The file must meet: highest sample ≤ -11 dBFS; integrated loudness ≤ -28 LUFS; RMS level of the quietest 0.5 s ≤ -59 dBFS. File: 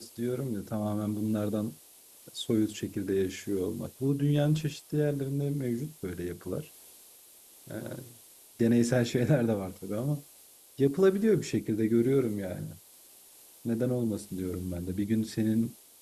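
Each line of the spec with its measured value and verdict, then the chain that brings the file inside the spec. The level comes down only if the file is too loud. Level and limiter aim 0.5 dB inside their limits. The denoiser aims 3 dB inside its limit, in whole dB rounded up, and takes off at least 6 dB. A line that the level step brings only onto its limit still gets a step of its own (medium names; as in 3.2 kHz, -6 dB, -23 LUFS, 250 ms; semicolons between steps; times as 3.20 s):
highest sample -13.0 dBFS: pass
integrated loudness -30.5 LUFS: pass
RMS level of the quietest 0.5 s -56 dBFS: fail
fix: noise reduction 6 dB, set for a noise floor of -56 dBFS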